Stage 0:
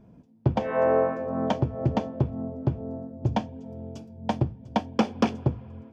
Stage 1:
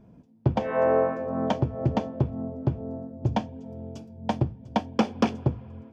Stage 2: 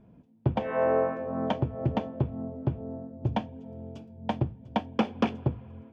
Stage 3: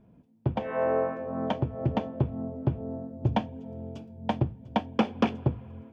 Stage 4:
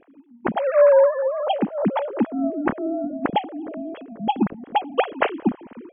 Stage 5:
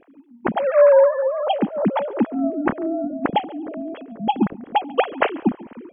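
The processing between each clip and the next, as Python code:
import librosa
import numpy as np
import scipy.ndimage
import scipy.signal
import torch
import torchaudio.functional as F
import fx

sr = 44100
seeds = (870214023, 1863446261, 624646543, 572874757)

y1 = x
y2 = fx.high_shelf_res(y1, sr, hz=4100.0, db=-7.0, q=1.5)
y2 = F.gain(torch.from_numpy(y2), -3.0).numpy()
y3 = fx.rider(y2, sr, range_db=3, speed_s=2.0)
y4 = fx.sine_speech(y3, sr)
y4 = F.gain(torch.from_numpy(y4), 8.0).numpy()
y5 = y4 + 10.0 ** (-23.0 / 20.0) * np.pad(y4, (int(140 * sr / 1000.0), 0))[:len(y4)]
y5 = F.gain(torch.from_numpy(y5), 1.5).numpy()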